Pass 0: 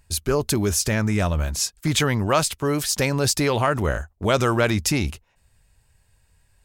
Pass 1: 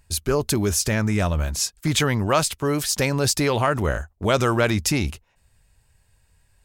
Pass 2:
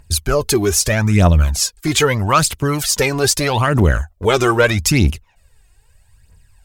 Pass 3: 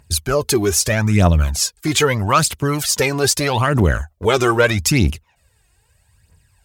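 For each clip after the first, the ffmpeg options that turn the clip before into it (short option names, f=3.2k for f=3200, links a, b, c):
-af anull
-af "aphaser=in_gain=1:out_gain=1:delay=2.9:decay=0.62:speed=0.79:type=triangular,volume=4dB"
-af "highpass=65,volume=-1dB"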